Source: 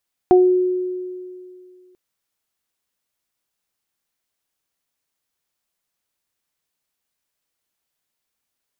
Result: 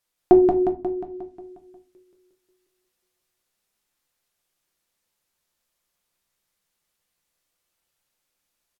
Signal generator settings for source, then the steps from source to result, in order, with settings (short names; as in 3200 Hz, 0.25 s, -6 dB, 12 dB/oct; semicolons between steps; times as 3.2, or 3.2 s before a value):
additive tone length 1.64 s, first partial 365 Hz, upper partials -4.5 dB, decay 2.32 s, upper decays 0.27 s, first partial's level -7.5 dB
treble ducked by the level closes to 1200 Hz, closed at -21.5 dBFS; on a send: feedback echo 0.179 s, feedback 57%, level -4 dB; on the sum: shoebox room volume 130 m³, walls furnished, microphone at 0.88 m